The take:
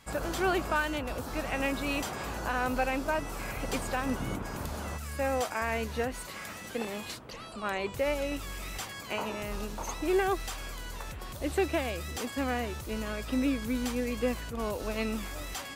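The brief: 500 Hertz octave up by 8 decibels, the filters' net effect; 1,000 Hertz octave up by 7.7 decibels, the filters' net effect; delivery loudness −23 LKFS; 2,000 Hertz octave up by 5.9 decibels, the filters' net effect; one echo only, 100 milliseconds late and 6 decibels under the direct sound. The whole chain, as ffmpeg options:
ffmpeg -i in.wav -af "equalizer=frequency=500:width_type=o:gain=8,equalizer=frequency=1000:width_type=o:gain=6,equalizer=frequency=2000:width_type=o:gain=5,aecho=1:1:100:0.501,volume=3dB" out.wav

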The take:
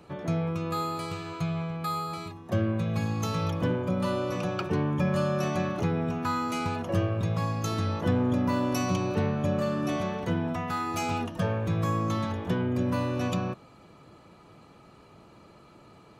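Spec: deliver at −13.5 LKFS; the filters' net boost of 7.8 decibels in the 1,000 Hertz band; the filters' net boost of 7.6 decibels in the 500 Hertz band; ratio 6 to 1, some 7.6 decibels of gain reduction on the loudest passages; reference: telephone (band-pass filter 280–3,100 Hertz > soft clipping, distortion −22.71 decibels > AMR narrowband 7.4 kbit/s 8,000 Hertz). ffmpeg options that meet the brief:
ffmpeg -i in.wav -af "equalizer=frequency=500:width_type=o:gain=7.5,equalizer=frequency=1000:width_type=o:gain=8,acompressor=threshold=-26dB:ratio=6,highpass=280,lowpass=3100,asoftclip=threshold=-22dB,volume=20dB" -ar 8000 -c:a libopencore_amrnb -b:a 7400 out.amr

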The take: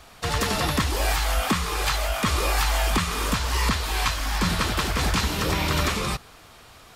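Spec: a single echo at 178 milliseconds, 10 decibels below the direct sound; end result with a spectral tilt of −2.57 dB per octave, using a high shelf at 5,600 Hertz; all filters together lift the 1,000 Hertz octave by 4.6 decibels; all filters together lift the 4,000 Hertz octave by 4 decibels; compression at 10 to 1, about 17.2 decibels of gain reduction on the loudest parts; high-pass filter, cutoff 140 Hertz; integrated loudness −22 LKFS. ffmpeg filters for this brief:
ffmpeg -i in.wav -af "highpass=140,equalizer=frequency=1000:width_type=o:gain=5.5,equalizer=frequency=4000:width_type=o:gain=7.5,highshelf=frequency=5600:gain=-7.5,acompressor=threshold=-35dB:ratio=10,aecho=1:1:178:0.316,volume=15dB" out.wav

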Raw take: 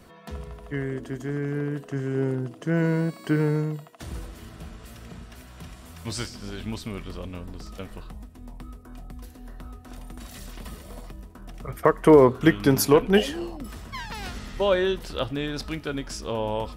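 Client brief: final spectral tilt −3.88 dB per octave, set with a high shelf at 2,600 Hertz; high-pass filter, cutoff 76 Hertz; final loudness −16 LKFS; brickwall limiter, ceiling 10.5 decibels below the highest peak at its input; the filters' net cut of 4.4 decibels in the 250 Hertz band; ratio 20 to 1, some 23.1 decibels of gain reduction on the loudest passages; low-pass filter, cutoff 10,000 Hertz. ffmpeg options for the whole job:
ffmpeg -i in.wav -af "highpass=76,lowpass=10000,equalizer=frequency=250:width_type=o:gain=-6.5,highshelf=frequency=2600:gain=8.5,acompressor=threshold=-35dB:ratio=20,volume=26dB,alimiter=limit=-3.5dB:level=0:latency=1" out.wav

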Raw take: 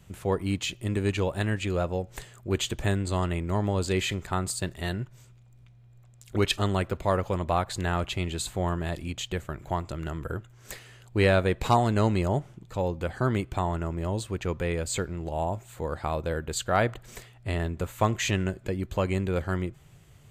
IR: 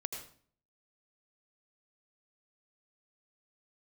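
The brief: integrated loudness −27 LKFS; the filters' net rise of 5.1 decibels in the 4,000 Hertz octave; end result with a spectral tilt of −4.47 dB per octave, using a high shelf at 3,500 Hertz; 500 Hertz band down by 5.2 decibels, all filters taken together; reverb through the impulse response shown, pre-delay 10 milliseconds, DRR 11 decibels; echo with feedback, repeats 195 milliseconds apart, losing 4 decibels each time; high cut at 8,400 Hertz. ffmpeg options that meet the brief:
-filter_complex "[0:a]lowpass=8400,equalizer=frequency=500:width_type=o:gain=-7,highshelf=frequency=3500:gain=5,equalizer=frequency=4000:width_type=o:gain=3.5,aecho=1:1:195|390|585|780|975|1170|1365|1560|1755:0.631|0.398|0.25|0.158|0.0994|0.0626|0.0394|0.0249|0.0157,asplit=2[link_01][link_02];[1:a]atrim=start_sample=2205,adelay=10[link_03];[link_02][link_03]afir=irnorm=-1:irlink=0,volume=-11dB[link_04];[link_01][link_04]amix=inputs=2:normalize=0,volume=-0.5dB"

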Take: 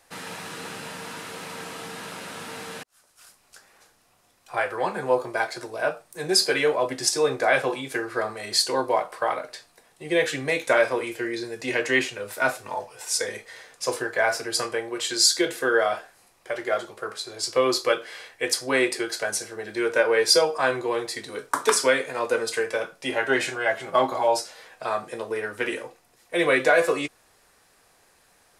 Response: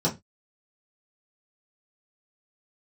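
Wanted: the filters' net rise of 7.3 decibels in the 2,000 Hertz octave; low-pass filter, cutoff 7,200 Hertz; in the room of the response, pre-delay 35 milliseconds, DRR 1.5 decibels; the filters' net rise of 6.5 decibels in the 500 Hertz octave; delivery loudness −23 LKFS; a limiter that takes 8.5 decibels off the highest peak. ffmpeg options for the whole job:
-filter_complex "[0:a]lowpass=7200,equalizer=frequency=500:width_type=o:gain=7,equalizer=frequency=2000:width_type=o:gain=9,alimiter=limit=-8.5dB:level=0:latency=1,asplit=2[link_01][link_02];[1:a]atrim=start_sample=2205,adelay=35[link_03];[link_02][link_03]afir=irnorm=-1:irlink=0,volume=-12.5dB[link_04];[link_01][link_04]amix=inputs=2:normalize=0,volume=-6dB"

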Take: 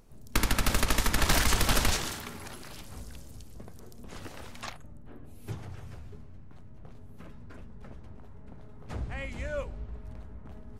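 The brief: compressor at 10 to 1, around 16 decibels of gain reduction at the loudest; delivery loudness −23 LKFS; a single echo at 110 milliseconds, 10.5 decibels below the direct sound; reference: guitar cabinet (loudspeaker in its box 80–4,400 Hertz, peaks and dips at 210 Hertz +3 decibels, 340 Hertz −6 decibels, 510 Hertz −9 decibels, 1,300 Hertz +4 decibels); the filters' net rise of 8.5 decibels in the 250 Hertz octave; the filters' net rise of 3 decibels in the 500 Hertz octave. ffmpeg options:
ffmpeg -i in.wav -af "equalizer=frequency=250:width_type=o:gain=8.5,equalizer=frequency=500:width_type=o:gain=7.5,acompressor=threshold=-34dB:ratio=10,highpass=80,equalizer=frequency=210:width_type=q:width=4:gain=3,equalizer=frequency=340:width_type=q:width=4:gain=-6,equalizer=frequency=510:width_type=q:width=4:gain=-9,equalizer=frequency=1300:width_type=q:width=4:gain=4,lowpass=frequency=4400:width=0.5412,lowpass=frequency=4400:width=1.3066,aecho=1:1:110:0.299,volume=20dB" out.wav

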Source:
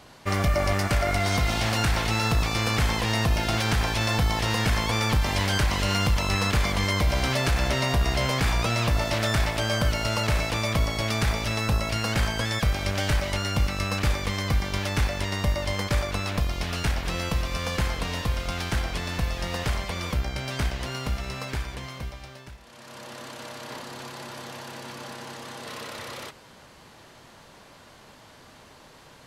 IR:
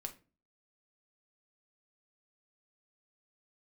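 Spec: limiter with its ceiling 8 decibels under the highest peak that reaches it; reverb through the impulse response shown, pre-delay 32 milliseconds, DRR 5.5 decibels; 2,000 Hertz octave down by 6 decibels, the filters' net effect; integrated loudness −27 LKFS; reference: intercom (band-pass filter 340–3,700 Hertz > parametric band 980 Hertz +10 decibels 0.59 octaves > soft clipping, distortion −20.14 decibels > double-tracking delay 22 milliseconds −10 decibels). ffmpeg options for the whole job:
-filter_complex "[0:a]equalizer=frequency=2000:width_type=o:gain=-8.5,alimiter=limit=-22.5dB:level=0:latency=1,asplit=2[link_01][link_02];[1:a]atrim=start_sample=2205,adelay=32[link_03];[link_02][link_03]afir=irnorm=-1:irlink=0,volume=-3dB[link_04];[link_01][link_04]amix=inputs=2:normalize=0,highpass=340,lowpass=3700,equalizer=frequency=980:width_type=o:width=0.59:gain=10,asoftclip=threshold=-23dB,asplit=2[link_05][link_06];[link_06]adelay=22,volume=-10dB[link_07];[link_05][link_07]amix=inputs=2:normalize=0,volume=6dB"

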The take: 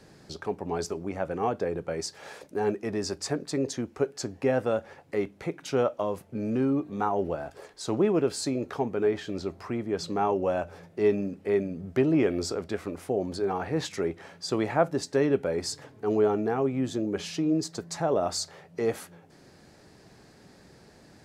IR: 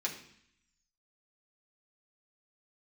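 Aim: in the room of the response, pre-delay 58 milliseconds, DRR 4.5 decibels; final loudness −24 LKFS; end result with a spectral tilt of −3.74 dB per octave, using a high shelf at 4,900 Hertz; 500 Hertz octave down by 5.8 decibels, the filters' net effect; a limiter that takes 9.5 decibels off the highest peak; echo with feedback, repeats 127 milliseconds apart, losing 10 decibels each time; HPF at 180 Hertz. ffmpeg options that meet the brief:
-filter_complex "[0:a]highpass=180,equalizer=frequency=500:width_type=o:gain=-7.5,highshelf=frequency=4900:gain=5,alimiter=limit=-22.5dB:level=0:latency=1,aecho=1:1:127|254|381|508:0.316|0.101|0.0324|0.0104,asplit=2[link_01][link_02];[1:a]atrim=start_sample=2205,adelay=58[link_03];[link_02][link_03]afir=irnorm=-1:irlink=0,volume=-7.5dB[link_04];[link_01][link_04]amix=inputs=2:normalize=0,volume=8.5dB"

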